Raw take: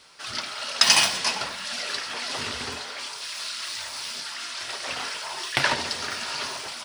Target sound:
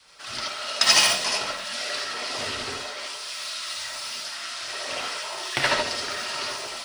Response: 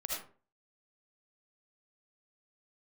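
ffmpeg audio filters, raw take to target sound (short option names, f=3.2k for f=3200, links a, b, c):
-filter_complex "[0:a]adynamicequalizer=threshold=0.00316:dfrequency=370:dqfactor=2:tfrequency=370:tqfactor=2:attack=5:release=100:ratio=0.375:range=2.5:mode=boostabove:tftype=bell[a];[1:a]atrim=start_sample=2205,atrim=end_sample=3969[b];[a][b]afir=irnorm=-1:irlink=0"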